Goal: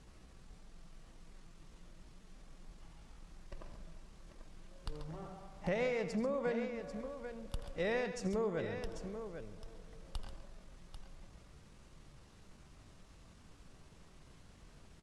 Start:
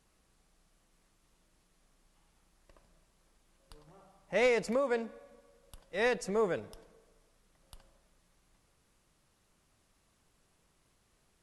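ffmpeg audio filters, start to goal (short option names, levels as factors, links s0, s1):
-af "lowpass=7200,lowshelf=f=270:g=8.5,acompressor=threshold=0.00794:ratio=8,atempo=0.76,aecho=1:1:82|136|792:0.211|0.282|0.355,volume=2.51"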